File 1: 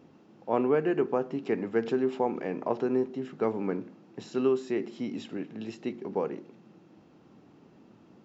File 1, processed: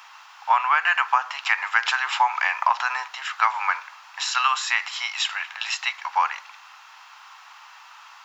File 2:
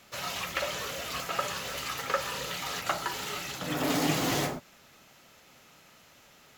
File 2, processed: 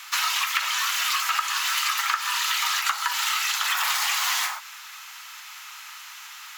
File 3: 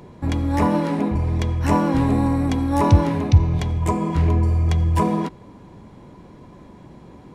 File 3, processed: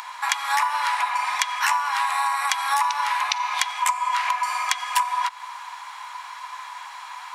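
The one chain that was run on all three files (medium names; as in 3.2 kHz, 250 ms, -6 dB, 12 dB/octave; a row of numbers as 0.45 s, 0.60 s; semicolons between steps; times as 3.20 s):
steep high-pass 930 Hz 48 dB/octave; compression 16:1, threshold -38 dBFS; normalise loudness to -23 LUFS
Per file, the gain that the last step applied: +23.5 dB, +17.0 dB, +19.0 dB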